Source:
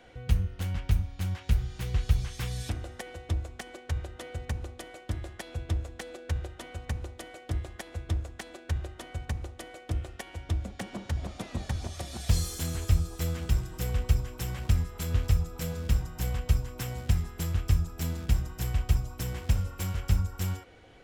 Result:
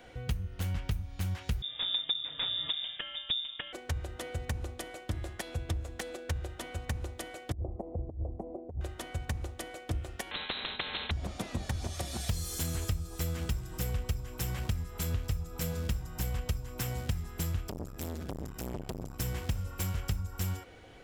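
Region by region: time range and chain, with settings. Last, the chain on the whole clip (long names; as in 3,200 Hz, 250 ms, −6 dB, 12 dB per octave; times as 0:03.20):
0:01.62–0:03.73: high-pass filter 52 Hz + voice inversion scrambler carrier 3,600 Hz
0:07.52–0:08.81: inverse Chebyshev low-pass filter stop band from 1,500 Hz + compressor whose output falls as the input rises −34 dBFS, ratio −0.5
0:10.31–0:11.11: low-shelf EQ 130 Hz −9 dB + voice inversion scrambler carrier 3,900 Hz + every bin compressed towards the loudest bin 4 to 1
0:17.68–0:19.20: downward compressor 12 to 1, threshold −27 dBFS + saturating transformer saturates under 710 Hz
whole clip: high-shelf EQ 11,000 Hz +7 dB; downward compressor 5 to 1, threshold −31 dBFS; level +1.5 dB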